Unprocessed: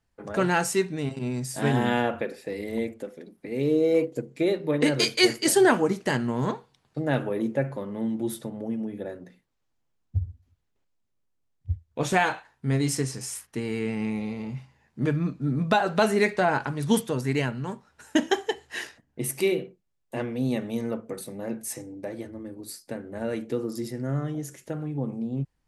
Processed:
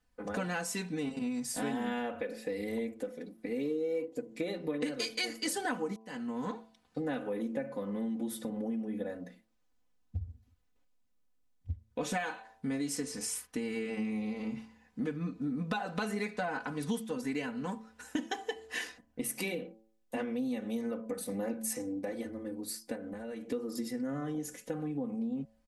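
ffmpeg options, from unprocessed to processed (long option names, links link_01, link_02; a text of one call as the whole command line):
ffmpeg -i in.wav -filter_complex "[0:a]asettb=1/sr,asplit=3[link_01][link_02][link_03];[link_01]atrim=end=22.954[link_04];[link_02]atrim=start=22.95:end=23.49,asetpts=PTS-STARTPTS,afade=type=in:duration=0.004:curve=qsin,afade=type=out:start_time=0.536:duration=0.004:curve=qsin,acompressor=threshold=-37dB:ratio=12:attack=3.2:release=140:knee=1:detection=peak[link_05];[link_03]atrim=start=23.486[link_06];[link_04][link_05]acrossfade=duration=0.004:curve1=hsin:curve2=qsin[link_07];[link_07][link_06]acrossfade=duration=0.004:curve1=qsin:curve2=hsin,asplit=4[link_08][link_09][link_10][link_11];[link_08]atrim=end=5.96,asetpts=PTS-STARTPTS,afade=type=out:start_time=5.956:duration=0.004:curve=hsin[link_12];[link_09]atrim=start=5.96:end=21.292,asetpts=PTS-STARTPTS,afade=type=in:duration=1.55:curve=qsin[link_13];[link_10]atrim=start=21.288:end=21.992,asetpts=PTS-STARTPTS,volume=4dB[link_14];[link_11]atrim=start=21.988[link_15];[link_12][link_13]concat=n=2:v=0:a=1[link_16];[link_16][link_14]acrossfade=duration=0.004:curve1=hsin:curve2=hsin[link_17];[link_17][link_15]acrossfade=duration=0.004:curve1=hsin:curve2=hsin,aecho=1:1:4:0.9,bandreject=frequency=110.9:width_type=h:width=4,bandreject=frequency=221.8:width_type=h:width=4,bandreject=frequency=332.7:width_type=h:width=4,bandreject=frequency=443.6:width_type=h:width=4,bandreject=frequency=554.5:width_type=h:width=4,bandreject=frequency=665.4:width_type=h:width=4,bandreject=frequency=776.3:width_type=h:width=4,bandreject=frequency=887.2:width_type=h:width=4,bandreject=frequency=998.1:width_type=h:width=4,bandreject=frequency=1109:width_type=h:width=4,acompressor=threshold=-30dB:ratio=5,volume=-2.5dB" out.wav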